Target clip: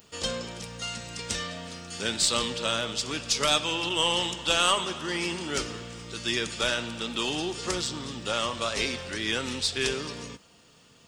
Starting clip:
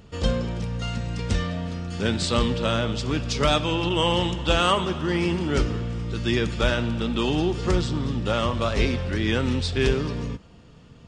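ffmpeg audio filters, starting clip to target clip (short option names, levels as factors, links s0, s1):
-filter_complex "[0:a]aemphasis=mode=production:type=riaa,asplit=2[s0][s1];[s1]aeval=exprs='clip(val(0),-1,0.0501)':c=same,volume=0.282[s2];[s0][s2]amix=inputs=2:normalize=0,volume=0.531"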